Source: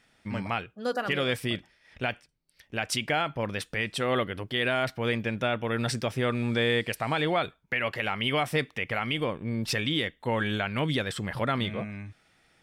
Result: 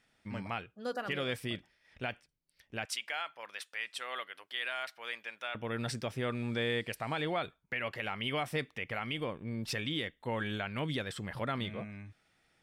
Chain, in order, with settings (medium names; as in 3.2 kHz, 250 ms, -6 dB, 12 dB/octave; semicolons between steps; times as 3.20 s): 2.85–5.55 s: high-pass 1 kHz 12 dB/octave; trim -7.5 dB